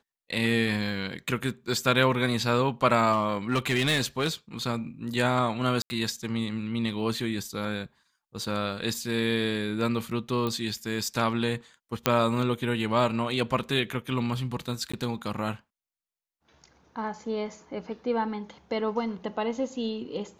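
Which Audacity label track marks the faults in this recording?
3.120000	4.270000	clipped -20 dBFS
5.820000	5.900000	dropout 80 ms
10.470000	10.470000	pop -17 dBFS
12.060000	12.060000	pop -5 dBFS
14.920000	14.940000	dropout 15 ms

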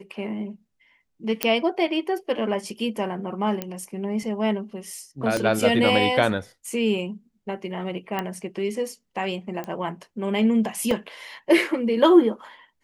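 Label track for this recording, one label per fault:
1.430000	1.430000	pop -3 dBFS
3.620000	3.620000	pop -13 dBFS
5.370000	5.370000	pop -12 dBFS
8.190000	8.190000	pop -13 dBFS
9.640000	9.640000	pop -19 dBFS
10.910000	10.910000	dropout 3.1 ms

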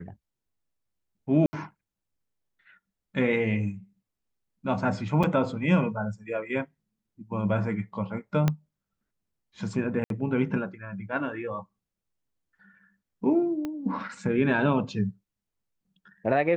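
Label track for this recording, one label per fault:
1.460000	1.530000	dropout 70 ms
5.230000	5.240000	dropout 5.5 ms
8.480000	8.480000	pop -11 dBFS
10.040000	10.100000	dropout 62 ms
13.650000	13.650000	pop -20 dBFS

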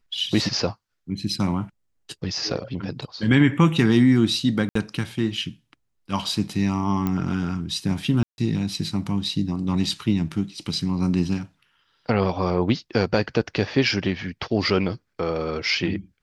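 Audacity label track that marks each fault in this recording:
4.690000	4.750000	dropout 64 ms
7.070000	7.070000	pop -13 dBFS
8.230000	8.380000	dropout 151 ms

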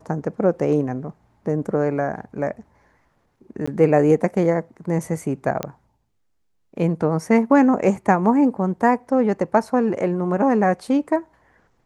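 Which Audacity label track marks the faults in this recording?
3.660000	3.670000	dropout 15 ms
5.630000	5.630000	pop -10 dBFS

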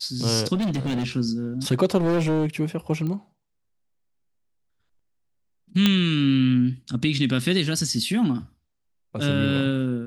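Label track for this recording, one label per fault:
0.540000	1.060000	clipped -21.5 dBFS
1.970000	2.470000	clipped -19 dBFS
3.070000	3.070000	pop -20 dBFS
5.860000	5.860000	pop -5 dBFS

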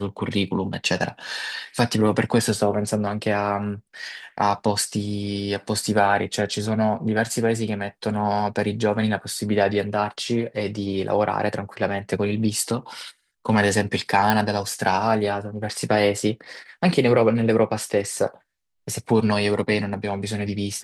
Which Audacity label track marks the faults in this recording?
14.300000	14.300000	pop -5 dBFS

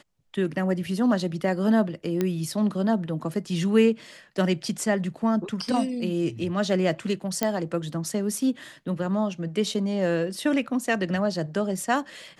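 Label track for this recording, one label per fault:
2.210000	2.210000	pop -12 dBFS
7.430000	7.430000	pop -8 dBFS

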